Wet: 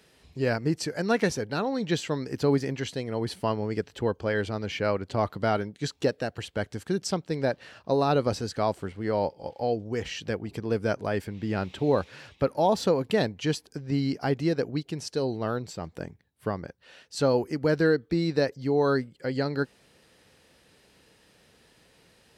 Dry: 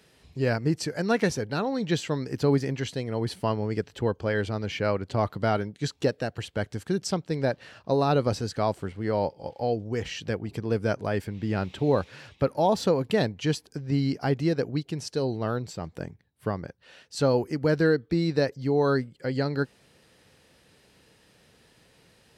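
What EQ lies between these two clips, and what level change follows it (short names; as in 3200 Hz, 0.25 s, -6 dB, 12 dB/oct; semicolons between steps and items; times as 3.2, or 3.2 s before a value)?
bell 120 Hz -3.5 dB 1.1 oct; 0.0 dB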